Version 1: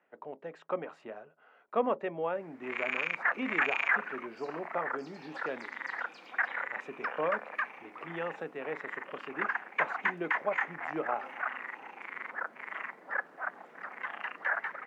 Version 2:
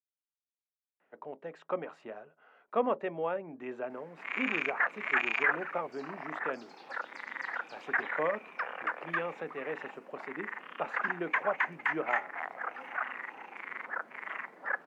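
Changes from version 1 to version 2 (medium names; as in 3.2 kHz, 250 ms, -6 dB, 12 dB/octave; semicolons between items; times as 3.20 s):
speech: entry +1.00 s; background: entry +1.55 s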